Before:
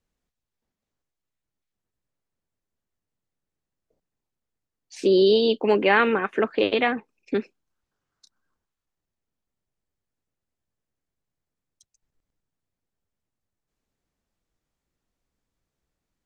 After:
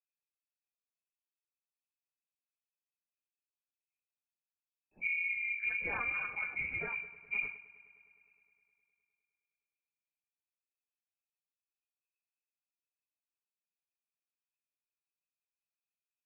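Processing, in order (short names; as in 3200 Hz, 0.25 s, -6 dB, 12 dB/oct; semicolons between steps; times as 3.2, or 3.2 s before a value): phase scrambler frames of 50 ms; de-hum 125.8 Hz, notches 13; gate with hold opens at -44 dBFS; fifteen-band EQ 160 Hz +11 dB, 630 Hz -6 dB, 1600 Hz -11 dB; compressor, threshold -22 dBFS, peak gain reduction 9 dB; fixed phaser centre 1600 Hz, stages 4; on a send: multi-head echo 0.103 s, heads first and second, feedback 69%, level -24 dB; on the sum: inverted band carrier 2600 Hz; sustainer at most 110 dB/s; gain -7 dB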